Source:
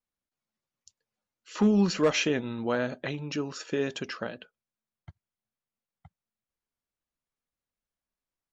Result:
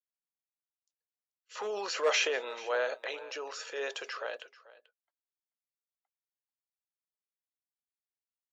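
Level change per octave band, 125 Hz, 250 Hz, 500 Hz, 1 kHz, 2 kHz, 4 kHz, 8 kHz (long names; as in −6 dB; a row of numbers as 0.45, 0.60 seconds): below −40 dB, −26.5 dB, −4.0 dB, −0.5 dB, 0.0 dB, −0.5 dB, can't be measured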